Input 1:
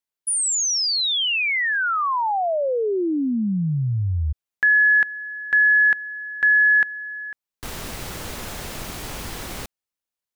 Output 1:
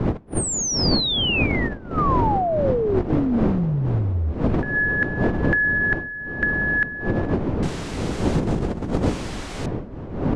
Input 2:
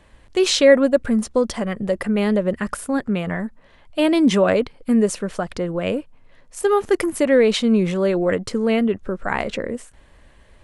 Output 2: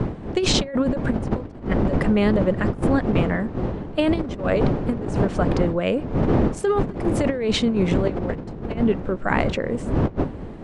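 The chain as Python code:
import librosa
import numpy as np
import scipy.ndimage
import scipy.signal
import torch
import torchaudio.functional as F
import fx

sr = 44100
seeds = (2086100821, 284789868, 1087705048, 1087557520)

y = fx.dmg_wind(x, sr, seeds[0], corner_hz=310.0, level_db=-16.0)
y = scipy.signal.sosfilt(scipy.signal.butter(4, 8900.0, 'lowpass', fs=sr, output='sos'), y)
y = fx.high_shelf(y, sr, hz=5600.0, db=-5.0)
y = fx.over_compress(y, sr, threshold_db=-17.0, ratio=-0.5)
y = y * librosa.db_to_amplitude(-3.0)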